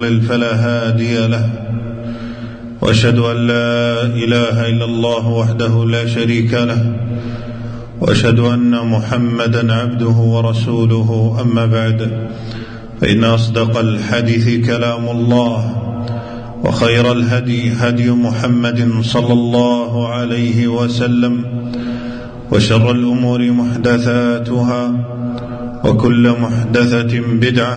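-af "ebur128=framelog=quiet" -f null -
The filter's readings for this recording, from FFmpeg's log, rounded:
Integrated loudness:
  I:         -14.3 LUFS
  Threshold: -24.5 LUFS
Loudness range:
  LRA:         1.8 LU
  Threshold: -34.6 LUFS
  LRA low:   -15.4 LUFS
  LRA high:  -13.6 LUFS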